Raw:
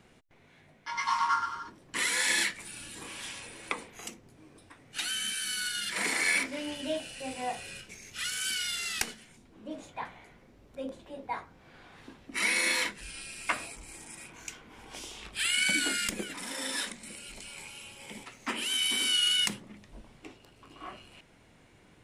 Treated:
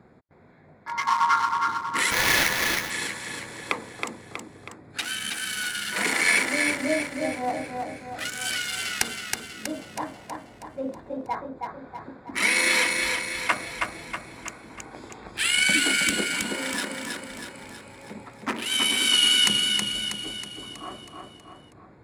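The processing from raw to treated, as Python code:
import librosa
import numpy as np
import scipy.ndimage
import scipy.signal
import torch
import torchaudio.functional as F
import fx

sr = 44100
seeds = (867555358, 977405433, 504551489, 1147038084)

y = fx.wiener(x, sr, points=15)
y = scipy.signal.sosfilt(scipy.signal.butter(2, 71.0, 'highpass', fs=sr, output='sos'), y)
y = fx.echo_feedback(y, sr, ms=321, feedback_pct=52, wet_db=-4.0)
y = fx.sample_hold(y, sr, seeds[0], rate_hz=8100.0, jitter_pct=20, at=(2.1, 2.89), fade=0.02)
y = F.gain(torch.from_numpy(y), 7.0).numpy()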